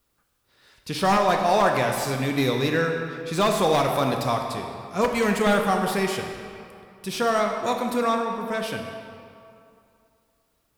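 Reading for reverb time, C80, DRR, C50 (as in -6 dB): 2.5 s, 5.5 dB, 2.5 dB, 4.0 dB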